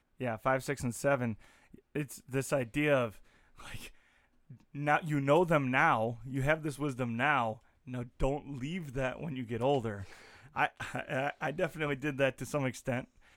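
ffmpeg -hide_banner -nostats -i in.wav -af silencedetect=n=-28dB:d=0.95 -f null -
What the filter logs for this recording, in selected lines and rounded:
silence_start: 3.07
silence_end: 4.87 | silence_duration: 1.80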